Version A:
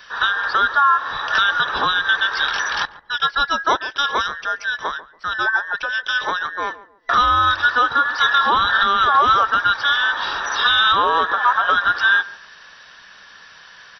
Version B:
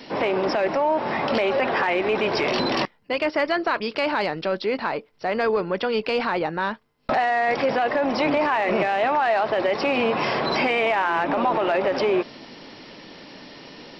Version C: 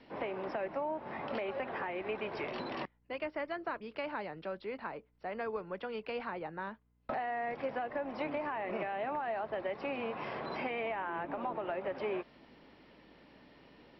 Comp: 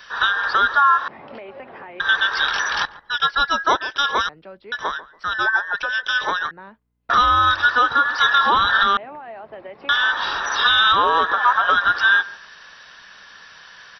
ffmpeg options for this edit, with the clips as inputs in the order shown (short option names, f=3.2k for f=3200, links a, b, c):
-filter_complex "[2:a]asplit=4[a][b][c][d];[0:a]asplit=5[e][f][g][h][i];[e]atrim=end=1.082[j];[a]atrim=start=1.078:end=2.002[k];[f]atrim=start=1.998:end=4.292[l];[b]atrim=start=4.288:end=4.722[m];[g]atrim=start=4.718:end=6.512[n];[c]atrim=start=6.508:end=7.102[o];[h]atrim=start=7.098:end=8.972[p];[d]atrim=start=8.968:end=9.892[q];[i]atrim=start=9.888[r];[j][k]acrossfade=d=0.004:c1=hsin:c2=hsin[s];[s][l]acrossfade=d=0.004:c1=hsin:c2=hsin[t];[t][m]acrossfade=d=0.004:c1=hsin:c2=hsin[u];[u][n]acrossfade=d=0.004:c1=hsin:c2=hsin[v];[v][o]acrossfade=d=0.004:c1=hsin:c2=hsin[w];[w][p]acrossfade=d=0.004:c1=hsin:c2=hsin[x];[x][q]acrossfade=d=0.004:c1=hsin:c2=hsin[y];[y][r]acrossfade=d=0.004:c1=hsin:c2=hsin"